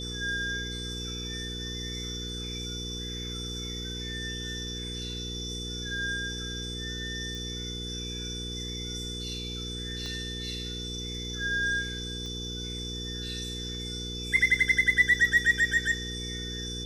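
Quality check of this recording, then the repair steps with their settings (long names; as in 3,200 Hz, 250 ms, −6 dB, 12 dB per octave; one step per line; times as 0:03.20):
mains hum 60 Hz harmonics 8 −38 dBFS
whistle 3,500 Hz −37 dBFS
0:07.35: click
0:10.06: click −26 dBFS
0:12.26: click −28 dBFS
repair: click removal
hum removal 60 Hz, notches 8
notch filter 3,500 Hz, Q 30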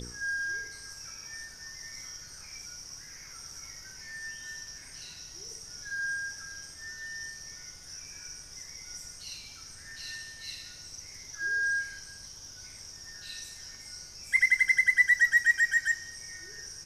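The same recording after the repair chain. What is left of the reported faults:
0:10.06: click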